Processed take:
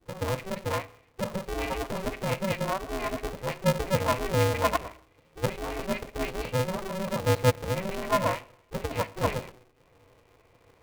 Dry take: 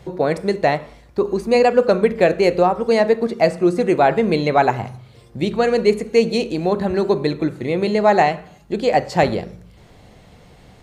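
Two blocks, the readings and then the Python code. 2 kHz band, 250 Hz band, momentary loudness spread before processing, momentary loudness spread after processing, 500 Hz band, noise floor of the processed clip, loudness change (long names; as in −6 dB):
−9.0 dB, −13.5 dB, 9 LU, 9 LU, −13.5 dB, −63 dBFS, −11.5 dB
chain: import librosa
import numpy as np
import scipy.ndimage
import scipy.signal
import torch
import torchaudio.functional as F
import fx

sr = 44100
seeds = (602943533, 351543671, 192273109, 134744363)

y = fx.vowel_filter(x, sr, vowel='u')
y = fx.dispersion(y, sr, late='highs', ms=83.0, hz=580.0)
y = y * np.sign(np.sin(2.0 * np.pi * 190.0 * np.arange(len(y)) / sr))
y = y * librosa.db_to_amplitude(1.5)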